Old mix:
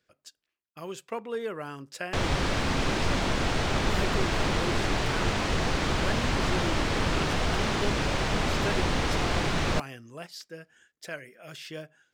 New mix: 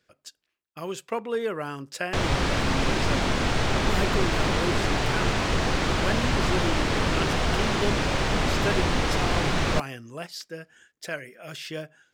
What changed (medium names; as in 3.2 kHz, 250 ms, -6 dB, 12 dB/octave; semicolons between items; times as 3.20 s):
speech +5.0 dB; reverb: on